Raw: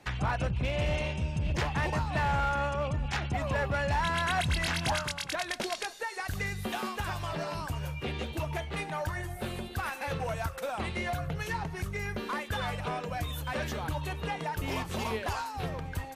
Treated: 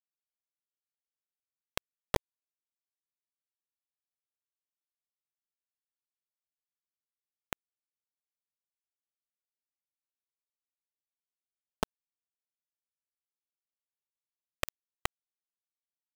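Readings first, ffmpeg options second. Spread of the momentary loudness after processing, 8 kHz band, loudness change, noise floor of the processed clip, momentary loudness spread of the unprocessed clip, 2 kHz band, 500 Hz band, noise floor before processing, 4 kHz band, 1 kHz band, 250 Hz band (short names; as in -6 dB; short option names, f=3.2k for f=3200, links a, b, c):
9 LU, -9.0 dB, -7.0 dB, under -85 dBFS, 7 LU, -15.5 dB, -13.0 dB, -42 dBFS, -12.0 dB, -16.0 dB, -15.5 dB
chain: -filter_complex "[0:a]bandreject=f=820:w=5.2,acrossover=split=160|3000[a][b][c];[b]acompressor=threshold=-39dB:ratio=8[d];[a][d][c]amix=inputs=3:normalize=0,asplit=3[e][f][g];[e]bandpass=f=300:t=q:w=8,volume=0dB[h];[f]bandpass=f=870:t=q:w=8,volume=-6dB[i];[g]bandpass=f=2.24k:t=q:w=8,volume=-9dB[j];[h][i][j]amix=inputs=3:normalize=0,aphaser=in_gain=1:out_gain=1:delay=4.6:decay=0.66:speed=0.93:type=triangular,aeval=exprs='abs(val(0))':c=same,acrusher=bits=5:mix=0:aa=0.000001,volume=16.5dB"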